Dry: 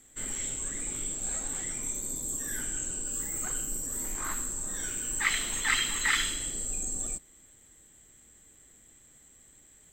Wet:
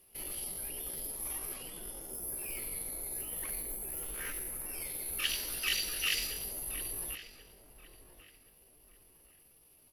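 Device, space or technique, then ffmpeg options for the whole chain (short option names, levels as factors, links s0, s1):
chipmunk voice: -filter_complex "[0:a]lowshelf=f=89:g=-4.5,asettb=1/sr,asplit=3[s0][s1][s2];[s0]atrim=end=1.554[s3];[s1]atrim=start=1.55:end=2.14,asetpts=PTS-STARTPTS,afade=t=in:d=0.004:c=qsin,afade=t=out:st=0.586:d=0.004:c=qsin,lowpass=6300[s4];[s2]atrim=start=2.136[s5];[s3][s4]acrossfade=d=0.004:c1=hsin:c2=qsin[s6];[s6][s5]acrossfade=d=0.004:c1=qsin:c2=hsin,asplit=2[s7][s8];[s8]adelay=1078,lowpass=f=1400:p=1,volume=0.282,asplit=2[s9][s10];[s10]adelay=1078,lowpass=f=1400:p=1,volume=0.36,asplit=2[s11][s12];[s12]adelay=1078,lowpass=f=1400:p=1,volume=0.36,asplit=2[s13][s14];[s14]adelay=1078,lowpass=f=1400:p=1,volume=0.36[s15];[s7][s9][s11][s13][s15]amix=inputs=5:normalize=0,asetrate=64194,aresample=44100,atempo=0.686977,volume=0.562"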